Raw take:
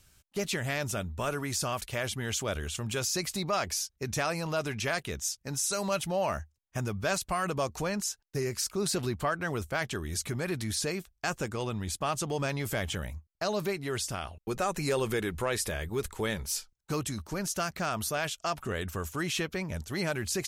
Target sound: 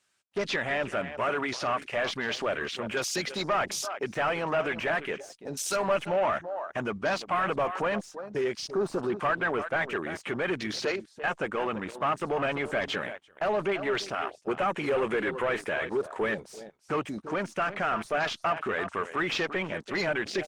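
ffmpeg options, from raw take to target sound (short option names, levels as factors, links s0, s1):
-filter_complex "[0:a]asettb=1/sr,asplit=3[s0][s1][s2];[s0]atrim=end=10.854[s3];[s1]atrim=start=10.85:end=11.28,asetpts=PTS-STARTPTS,afade=t=in:d=0.004:c=qsin,afade=t=out:st=0.426:d=0.004:c=qsin,acrossover=split=270 7600:gain=0.1 1 0.1[s4][s5][s6];[s4][s5][s6]amix=inputs=3:normalize=0[s7];[s2]atrim=start=11.276[s8];[s3][s7]acrossfade=d=0.004:c1=hsin:c2=qsin[s9];[s9][s8]acrossfade=d=0.004:c1=qsin:c2=hsin,aresample=22050,aresample=44100,highpass=180,aeval=exprs='clip(val(0),-1,0.0501)':c=same,asettb=1/sr,asplit=3[s10][s11][s12];[s10]atrim=end=18.644[s13];[s11]atrim=start=18.64:end=19.37,asetpts=PTS-STARTPTS,afade=t=in:d=0.004:c=qsin,afade=t=out:st=0.726:d=0.004:c=qsin,adynamicequalizer=threshold=0.00282:dfrequency=530:dqfactor=4.8:tfrequency=530:tqfactor=4.8:attack=5:release=100:ratio=0.375:range=2:mode=cutabove:tftype=bell[s14];[s12]atrim=start=19.366[s15];[s13][s14]acrossfade=d=0.004:c1=hsin:c2=qsin[s16];[s16][s15]acrossfade=d=0.004:c1=qsin:c2=hsin,asplit=2[s17][s18];[s18]adelay=338.2,volume=0.2,highshelf=f=4000:g=-7.61[s19];[s17][s19]amix=inputs=2:normalize=0,asplit=2[s20][s21];[s21]highpass=f=720:p=1,volume=10,asoftclip=type=tanh:threshold=0.126[s22];[s20][s22]amix=inputs=2:normalize=0,lowpass=f=3600:p=1,volume=0.501,afwtdn=0.02,asettb=1/sr,asplit=3[s23][s24][s25];[s23]atrim=end=5.494[s26];[s24]atrim=start=5.49:end=5.97,asetpts=PTS-STARTPTS,afade=t=in:d=0.004:c=qsin,afade=t=out:st=0.476:d=0.004:c=qsin,asplit=2[s27][s28];[s28]adelay=12,volume=0.398[s29];[s27][s29]amix=inputs=2:normalize=0,atrim=end_sample=21168[s30];[s25]atrim=start=5.966[s31];[s26][s30]acrossfade=d=0.004:c1=hsin:c2=qsin[s32];[s32][s31]acrossfade=d=0.004:c1=qsin:c2=hsin" -ar 48000 -c:a libopus -b:a 20k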